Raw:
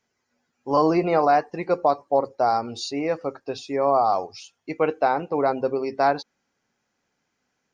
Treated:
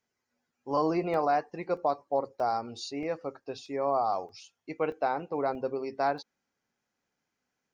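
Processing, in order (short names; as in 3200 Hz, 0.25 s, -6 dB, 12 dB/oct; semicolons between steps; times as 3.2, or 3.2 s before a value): crackling interface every 0.63 s, samples 64, zero, from 0.51; gain -8 dB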